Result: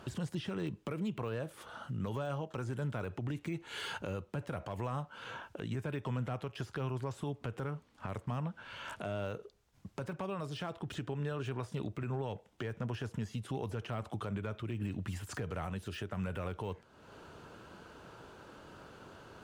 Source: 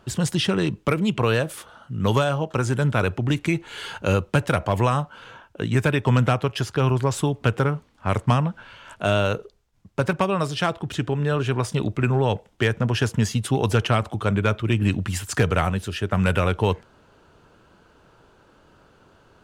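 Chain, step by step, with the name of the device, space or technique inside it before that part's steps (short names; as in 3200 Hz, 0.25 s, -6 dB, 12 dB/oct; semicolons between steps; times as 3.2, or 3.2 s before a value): podcast mastering chain (HPF 74 Hz 6 dB/oct; de-esser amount 100%; compressor 2.5:1, threshold -44 dBFS, peak gain reduction 18 dB; limiter -31 dBFS, peak gain reduction 7 dB; gain +3 dB; MP3 96 kbps 48000 Hz)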